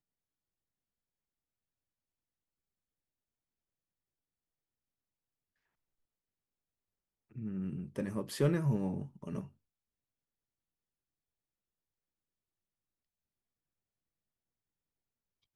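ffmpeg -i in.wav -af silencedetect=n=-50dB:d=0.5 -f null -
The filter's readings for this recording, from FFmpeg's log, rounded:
silence_start: 0.00
silence_end: 7.35 | silence_duration: 7.35
silence_start: 9.47
silence_end: 15.56 | silence_duration: 6.08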